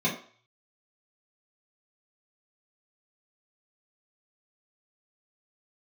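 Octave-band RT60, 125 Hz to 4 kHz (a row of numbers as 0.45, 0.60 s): 0.60, 0.35, 0.45, 0.50, 0.50, 0.45 s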